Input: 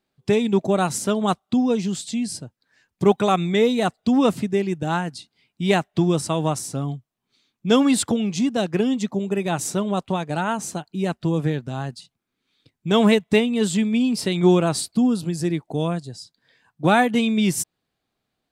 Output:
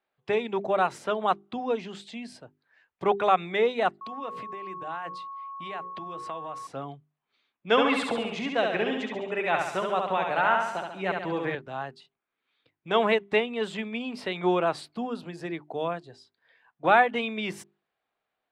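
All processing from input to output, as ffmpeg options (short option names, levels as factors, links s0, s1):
-filter_complex "[0:a]asettb=1/sr,asplit=3[s0][s1][s2];[s0]atrim=end=4.014[s3];[s1]atrim=start=4.01:end=6.67,asetpts=PTS-STARTPTS,afade=t=in:d=0.004:c=qsin,afade=t=out:st=2.656:d=0.004:c=qsin,bandreject=f=60:t=h:w=6,bandreject=f=120:t=h:w=6,bandreject=f=180:t=h:w=6,bandreject=f=240:t=h:w=6,bandreject=f=300:t=h:w=6,bandreject=f=360:t=h:w=6,bandreject=f=420:t=h:w=6,bandreject=f=480:t=h:w=6,bandreject=f=540:t=h:w=6,acompressor=threshold=0.0447:ratio=16:attack=3.2:release=140:knee=1:detection=peak,aeval=exprs='val(0)+0.0158*sin(2*PI*1100*n/s)':c=same[s4];[s2]atrim=start=6.666[s5];[s3][s4]acrossfade=d=0.004:c1=hsin:c2=qsin[s6];[s6][s5]acrossfade=d=0.004:c1=qsin:c2=hsin,asettb=1/sr,asplit=3[s7][s8][s9];[s7]atrim=end=7.704[s10];[s8]atrim=start=7.7:end=11.55,asetpts=PTS-STARTPTS,afade=t=in:d=0.004:c=qsin,afade=t=out:st=3.846:d=0.004:c=qsin,equalizer=f=2100:t=o:w=1:g=6,aecho=1:1:69|138|207|276|345|414|483:0.631|0.334|0.177|0.0939|0.0498|0.0264|0.014,atrim=end_sample=169785[s11];[s9]atrim=start=11.546[s12];[s10][s11]acrossfade=d=0.004:c1=hsin:c2=qsin[s13];[s13][s12]acrossfade=d=0.004:c1=qsin:c2=hsin,acrossover=split=450 3100:gain=0.141 1 0.0631[s14][s15][s16];[s14][s15][s16]amix=inputs=3:normalize=0,bandreject=f=50:t=h:w=6,bandreject=f=100:t=h:w=6,bandreject=f=150:t=h:w=6,bandreject=f=200:t=h:w=6,bandreject=f=250:t=h:w=6,bandreject=f=300:t=h:w=6,bandreject=f=350:t=h:w=6,bandreject=f=400:t=h:w=6"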